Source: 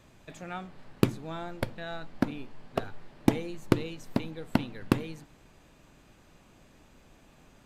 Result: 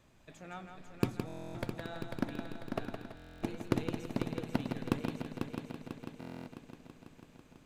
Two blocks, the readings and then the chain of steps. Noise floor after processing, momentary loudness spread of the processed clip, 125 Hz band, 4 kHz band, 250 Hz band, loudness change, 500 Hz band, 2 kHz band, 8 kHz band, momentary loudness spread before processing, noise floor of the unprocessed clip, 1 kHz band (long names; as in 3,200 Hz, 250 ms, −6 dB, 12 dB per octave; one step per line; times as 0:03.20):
−61 dBFS, 18 LU, −5.5 dB, −6.0 dB, −6.0 dB, −7.0 dB, −5.5 dB, −5.5 dB, −6.0 dB, 15 LU, −59 dBFS, −5.5 dB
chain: phase distortion by the signal itself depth 0.06 ms
echo machine with several playback heads 165 ms, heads first and third, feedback 70%, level −7 dB
buffer that repeats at 0:01.27/0:03.15/0:06.19, samples 1,024, times 11
level −7.5 dB